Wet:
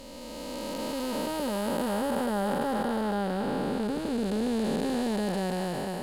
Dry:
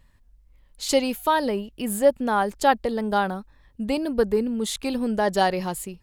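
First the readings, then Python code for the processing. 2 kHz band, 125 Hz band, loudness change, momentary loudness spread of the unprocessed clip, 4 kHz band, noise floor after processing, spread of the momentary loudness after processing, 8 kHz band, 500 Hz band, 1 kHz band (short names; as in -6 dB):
-8.0 dB, n/a, -6.0 dB, 8 LU, -6.0 dB, -40 dBFS, 5 LU, -8.0 dB, -6.5 dB, -8.5 dB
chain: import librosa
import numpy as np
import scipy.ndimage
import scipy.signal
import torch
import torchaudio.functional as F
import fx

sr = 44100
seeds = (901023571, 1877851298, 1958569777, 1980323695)

p1 = fx.spec_blur(x, sr, span_ms=1450.0)
p2 = np.clip(p1, -10.0 ** (-28.5 / 20.0), 10.0 ** (-28.5 / 20.0))
y = p1 + (p2 * librosa.db_to_amplitude(-7.0))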